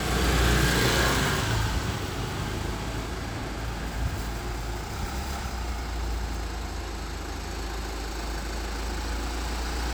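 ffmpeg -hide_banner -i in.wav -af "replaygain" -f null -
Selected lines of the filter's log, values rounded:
track_gain = +8.5 dB
track_peak = 0.228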